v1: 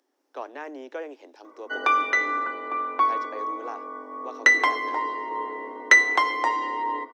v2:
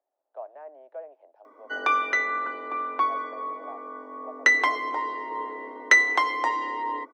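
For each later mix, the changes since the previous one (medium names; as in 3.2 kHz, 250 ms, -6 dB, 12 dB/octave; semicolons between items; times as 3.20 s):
speech: add ladder band-pass 690 Hz, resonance 75%; background: send off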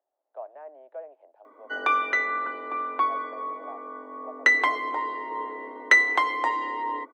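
master: add peaking EQ 5.5 kHz -10.5 dB 0.36 oct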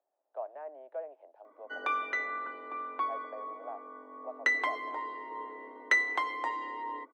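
background -8.5 dB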